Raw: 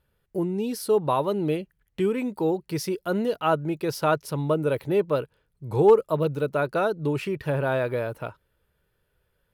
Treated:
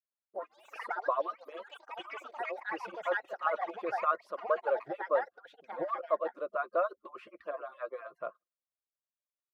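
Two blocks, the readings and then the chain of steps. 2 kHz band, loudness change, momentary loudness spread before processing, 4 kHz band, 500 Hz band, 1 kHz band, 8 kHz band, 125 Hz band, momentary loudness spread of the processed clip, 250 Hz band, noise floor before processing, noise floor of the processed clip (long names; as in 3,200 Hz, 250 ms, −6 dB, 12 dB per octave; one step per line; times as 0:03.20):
−4.5 dB, −10.0 dB, 9 LU, −13.5 dB, −11.5 dB, −5.0 dB, below −25 dB, below −35 dB, 14 LU, −22.5 dB, −74 dBFS, below −85 dBFS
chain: harmonic-percussive split with one part muted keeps percussive
noise gate with hold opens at −55 dBFS
pair of resonant band-passes 840 Hz, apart 0.85 octaves
comb filter 5.7 ms, depth 48%
delay with pitch and tempo change per echo 93 ms, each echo +5 semitones, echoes 3, each echo −6 dB
level +1.5 dB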